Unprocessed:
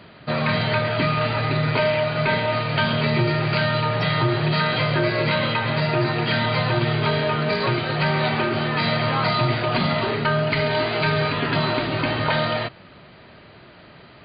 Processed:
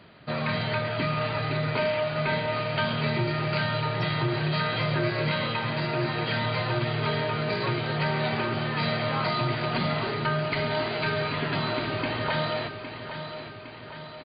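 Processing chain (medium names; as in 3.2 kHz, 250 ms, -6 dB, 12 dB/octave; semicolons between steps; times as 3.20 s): feedback delay 810 ms, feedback 57%, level -10 dB; trim -6.5 dB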